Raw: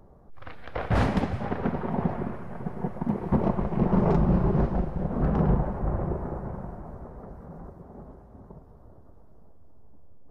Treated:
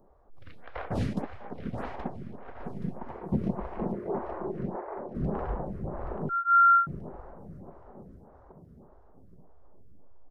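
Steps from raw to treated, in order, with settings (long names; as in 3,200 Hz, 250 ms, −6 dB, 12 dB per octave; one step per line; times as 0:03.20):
0:01.13–0:02.59: noise gate −24 dBFS, range −6 dB
0:03.92–0:05.15: elliptic band-pass filter 330–2,000 Hz
repeating echo 825 ms, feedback 29%, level −6 dB
0:06.29–0:06.87: beep over 1,380 Hz −11.5 dBFS
phaser with staggered stages 1.7 Hz
level −3.5 dB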